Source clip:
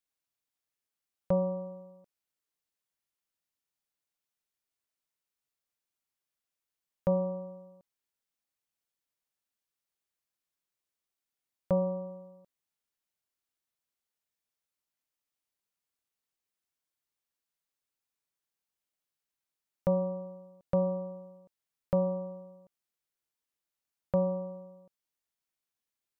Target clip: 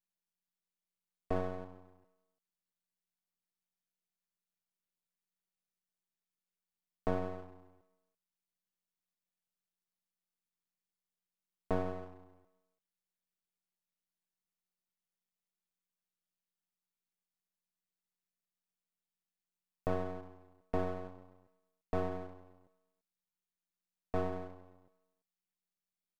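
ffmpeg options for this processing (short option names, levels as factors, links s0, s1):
-filter_complex "[0:a]aeval=exprs='val(0)*sin(2*PI*91*n/s)':c=same,asplit=2[s0][s1];[s1]adelay=340,highpass=300,lowpass=3400,asoftclip=type=hard:threshold=0.0531,volume=0.0794[s2];[s0][s2]amix=inputs=2:normalize=0,aeval=exprs='max(val(0),0)':c=same"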